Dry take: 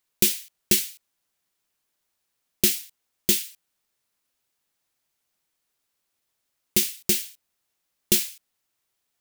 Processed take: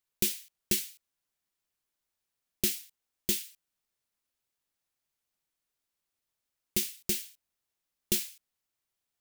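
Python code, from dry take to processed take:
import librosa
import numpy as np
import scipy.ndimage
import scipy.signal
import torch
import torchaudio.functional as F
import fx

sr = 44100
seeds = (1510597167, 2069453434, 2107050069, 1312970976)

y = fx.low_shelf(x, sr, hz=88.0, db=6.0)
y = F.gain(torch.from_numpy(y), -8.5).numpy()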